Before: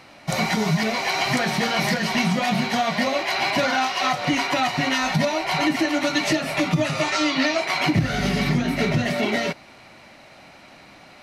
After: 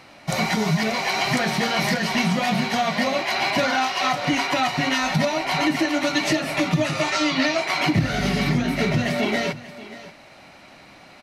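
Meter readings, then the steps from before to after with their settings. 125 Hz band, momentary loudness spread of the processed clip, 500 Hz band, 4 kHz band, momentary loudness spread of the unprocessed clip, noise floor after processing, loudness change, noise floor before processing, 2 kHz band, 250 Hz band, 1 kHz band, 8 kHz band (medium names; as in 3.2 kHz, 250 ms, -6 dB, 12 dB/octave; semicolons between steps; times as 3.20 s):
0.0 dB, 2 LU, 0.0 dB, 0.0 dB, 2 LU, -47 dBFS, 0.0 dB, -47 dBFS, 0.0 dB, 0.0 dB, 0.0 dB, 0.0 dB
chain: delay 584 ms -16.5 dB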